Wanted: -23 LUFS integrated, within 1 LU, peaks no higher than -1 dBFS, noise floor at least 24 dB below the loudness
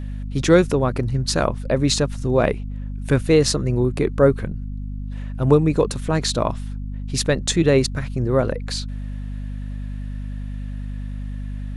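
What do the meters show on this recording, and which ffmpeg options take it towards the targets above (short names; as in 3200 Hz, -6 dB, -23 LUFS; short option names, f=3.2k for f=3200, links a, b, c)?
hum 50 Hz; harmonics up to 250 Hz; hum level -26 dBFS; loudness -20.5 LUFS; peak -1.5 dBFS; loudness target -23.0 LUFS
-> -af "bandreject=f=50:t=h:w=6,bandreject=f=100:t=h:w=6,bandreject=f=150:t=h:w=6,bandreject=f=200:t=h:w=6,bandreject=f=250:t=h:w=6"
-af "volume=-2.5dB"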